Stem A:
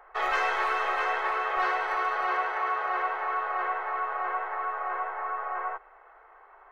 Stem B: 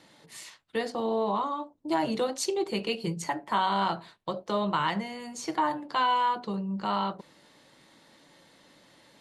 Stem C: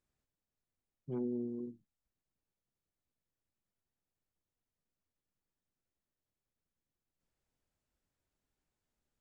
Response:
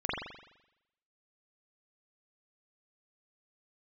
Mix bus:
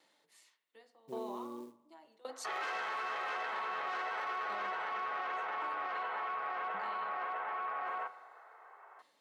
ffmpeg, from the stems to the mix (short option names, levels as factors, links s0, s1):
-filter_complex "[0:a]aeval=exprs='(tanh(14.1*val(0)+0.55)-tanh(0.55))/14.1':c=same,adelay=2300,volume=0.944,asplit=2[s0][s1];[s1]volume=0.0631[s2];[1:a]aeval=exprs='val(0)*pow(10,-25*if(lt(mod(0.89*n/s,1),2*abs(0.89)/1000),1-mod(0.89*n/s,1)/(2*abs(0.89)/1000),(mod(0.89*n/s,1)-2*abs(0.89)/1000)/(1-2*abs(0.89)/1000))/20)':c=same,volume=0.266,asplit=2[s3][s4];[s4]volume=0.106[s5];[2:a]alimiter=level_in=2.66:limit=0.0631:level=0:latency=1:release=34,volume=0.376,acrusher=bits=7:mode=log:mix=0:aa=0.000001,volume=1.06,asplit=2[s6][s7];[s7]volume=0.0631[s8];[3:a]atrim=start_sample=2205[s9];[s2][s5][s8]amix=inputs=3:normalize=0[s10];[s10][s9]afir=irnorm=-1:irlink=0[s11];[s0][s3][s6][s11]amix=inputs=4:normalize=0,highpass=390,alimiter=level_in=2.11:limit=0.0631:level=0:latency=1:release=11,volume=0.473"